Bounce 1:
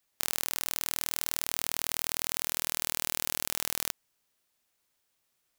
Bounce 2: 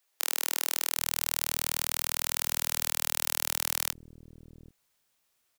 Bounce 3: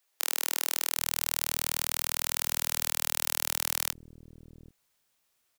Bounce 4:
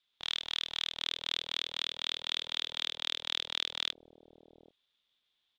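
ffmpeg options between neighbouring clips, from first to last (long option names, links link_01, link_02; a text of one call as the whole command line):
ffmpeg -i in.wav -filter_complex "[0:a]asplit=2[link_01][link_02];[link_02]adelay=23,volume=-13.5dB[link_03];[link_01][link_03]amix=inputs=2:normalize=0,acrossover=split=300[link_04][link_05];[link_04]adelay=780[link_06];[link_06][link_05]amix=inputs=2:normalize=0,volume=2dB" out.wav
ffmpeg -i in.wav -af anull out.wav
ffmpeg -i in.wav -af "aeval=exprs='val(0)*sin(2*PI*400*n/s)':channel_layout=same,lowpass=frequency=3500:width_type=q:width=9,volume=-6dB" out.wav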